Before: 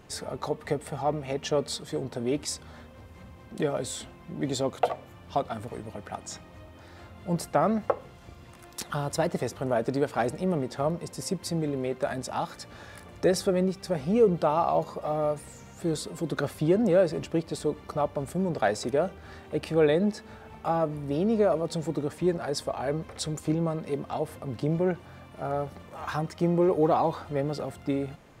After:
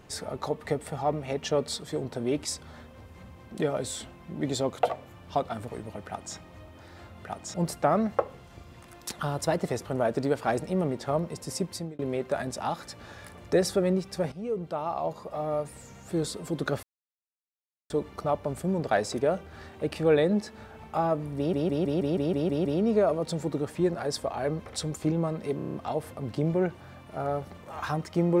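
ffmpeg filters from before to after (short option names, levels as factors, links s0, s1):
-filter_complex "[0:a]asplit=21[s0][s1][s2][s3][s4][s5][s6][s7][s8][s9][s10][s11][s12][s13][s14][s15][s16][s17][s18][s19][s20];[s0]atrim=end=7.252[s21];[s1]atrim=start=6.068:end=6.362[s22];[s2]atrim=start=7.248:end=11.7,asetpts=PTS-STARTPTS,afade=t=out:st=4.142:d=0.31[s23];[s3]atrim=start=11.7:end=14.03,asetpts=PTS-STARTPTS,afade=t=in:d=0.004:c=hsin,afade=t=out:st=2.326:d=0.004:c=hsin:silence=0.211349[s24];[s4]atrim=start=14.03:end=16.54,asetpts=PTS-STARTPTS,afade=t=in:d=1.73:silence=0.211349,afade=t=out:st=2.506:d=0.004:c=hsin[s25];[s5]atrim=start=16.54:end=17.61,asetpts=PTS-STARTPTS,volume=0[s26];[s6]atrim=start=17.61:end=21.242,asetpts=PTS-STARTPTS,afade=t=in:d=0.004:c=hsin[s27];[s7]atrim=start=21.078:end=21.242[s28];[s8]atrim=start=21.078:end=21.242[s29];[s9]atrim=start=21.078:end=21.242[s30];[s10]atrim=start=21.078:end=21.242[s31];[s11]atrim=start=21.078:end=21.242[s32];[s12]atrim=start=21.078:end=21.242[s33];[s13]atrim=start=21.078:end=21.242[s34];[s14]atrim=start=21.078:end=24.022[s35];[s15]atrim=start=23.988:end=24.022[s36];[s16]atrim=start=23.988:end=24.022[s37];[s17]atrim=start=23.988:end=24.022[s38];[s18]atrim=start=23.988:end=24.022[s39];[s19]atrim=start=23.988:end=24.022[s40];[s20]atrim=start=23.988[s41];[s21][s22]acrossfade=d=0.004:c1=hsin:c2=hsin[s42];[s23][s24][s25][s26][s27]concat=n=5:v=0:a=1[s43];[s42][s43]acrossfade=d=0.004:c1=hsin:c2=hsin[s44];[s44][s28]acrossfade=d=0.004:c1=hsin:c2=hsin[s45];[s45][s29]acrossfade=d=0.004:c1=hsin:c2=hsin[s46];[s46][s30]acrossfade=d=0.004:c1=hsin:c2=hsin[s47];[s47][s31]acrossfade=d=0.004:c1=hsin:c2=hsin[s48];[s48][s32]acrossfade=d=0.004:c1=hsin:c2=hsin[s49];[s49][s33]acrossfade=d=0.004:c1=hsin:c2=hsin[s50];[s50][s34]acrossfade=d=0.004:c1=hsin:c2=hsin[s51];[s51][s35]acrossfade=d=0.004:c1=hsin:c2=hsin[s52];[s52][s36]acrossfade=d=0.004:c1=hsin:c2=hsin[s53];[s53][s37]acrossfade=d=0.004:c1=hsin:c2=hsin[s54];[s54][s38]acrossfade=d=0.004:c1=hsin:c2=hsin[s55];[s55][s39]acrossfade=d=0.004:c1=hsin:c2=hsin[s56];[s56][s40]acrossfade=d=0.004:c1=hsin:c2=hsin[s57];[s57][s41]acrossfade=d=0.004:c1=hsin:c2=hsin"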